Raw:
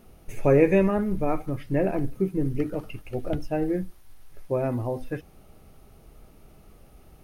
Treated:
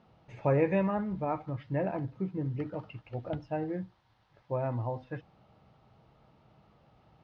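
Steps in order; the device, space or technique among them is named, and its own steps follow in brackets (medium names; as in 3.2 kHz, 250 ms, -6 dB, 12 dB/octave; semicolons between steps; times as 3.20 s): guitar cabinet (cabinet simulation 110–4300 Hz, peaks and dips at 120 Hz +6 dB, 260 Hz -5 dB, 390 Hz -8 dB, 920 Hz +7 dB, 2.4 kHz -4 dB); trim -5.5 dB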